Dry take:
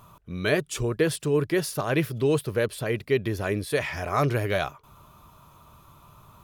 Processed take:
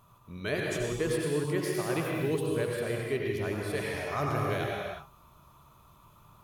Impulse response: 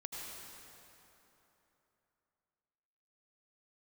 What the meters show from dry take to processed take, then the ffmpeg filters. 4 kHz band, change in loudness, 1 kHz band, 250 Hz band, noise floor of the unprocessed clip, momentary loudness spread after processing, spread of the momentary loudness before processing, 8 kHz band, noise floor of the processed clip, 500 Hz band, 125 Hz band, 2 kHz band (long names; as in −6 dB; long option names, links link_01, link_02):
−5.5 dB, −5.0 dB, −4.5 dB, −5.0 dB, −54 dBFS, 5 LU, 5 LU, −5.5 dB, −59 dBFS, −5.0 dB, −5.5 dB, −5.0 dB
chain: -filter_complex "[1:a]atrim=start_sample=2205,afade=type=out:start_time=0.43:duration=0.01,atrim=end_sample=19404[link_01];[0:a][link_01]afir=irnorm=-1:irlink=0,volume=-3.5dB"